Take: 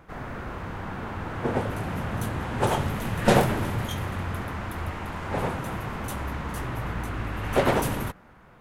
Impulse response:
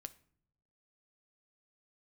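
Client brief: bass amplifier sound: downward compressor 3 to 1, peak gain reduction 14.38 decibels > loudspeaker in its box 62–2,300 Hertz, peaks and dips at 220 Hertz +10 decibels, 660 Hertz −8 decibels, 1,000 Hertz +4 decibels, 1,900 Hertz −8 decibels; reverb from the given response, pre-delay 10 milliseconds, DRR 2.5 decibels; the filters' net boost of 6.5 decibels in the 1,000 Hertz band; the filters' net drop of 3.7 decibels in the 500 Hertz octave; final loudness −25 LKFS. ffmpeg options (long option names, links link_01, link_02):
-filter_complex "[0:a]equalizer=frequency=500:width_type=o:gain=-4.5,equalizer=frequency=1000:width_type=o:gain=8.5,asplit=2[link_01][link_02];[1:a]atrim=start_sample=2205,adelay=10[link_03];[link_02][link_03]afir=irnorm=-1:irlink=0,volume=3dB[link_04];[link_01][link_04]amix=inputs=2:normalize=0,acompressor=threshold=-30dB:ratio=3,highpass=frequency=62:width=0.5412,highpass=frequency=62:width=1.3066,equalizer=frequency=220:width_type=q:width=4:gain=10,equalizer=frequency=660:width_type=q:width=4:gain=-8,equalizer=frequency=1000:width_type=q:width=4:gain=4,equalizer=frequency=1900:width_type=q:width=4:gain=-8,lowpass=frequency=2300:width=0.5412,lowpass=frequency=2300:width=1.3066,volume=6dB"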